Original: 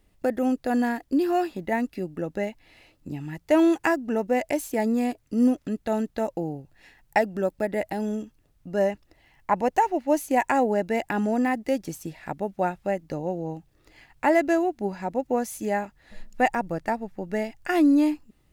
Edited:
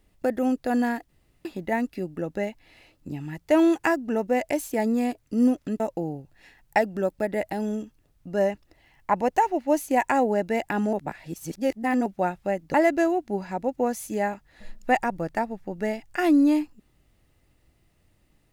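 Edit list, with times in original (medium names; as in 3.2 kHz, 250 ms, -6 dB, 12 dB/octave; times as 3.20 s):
1.09–1.45 s: room tone
5.80–6.20 s: delete
11.33–12.46 s: reverse
13.14–14.25 s: delete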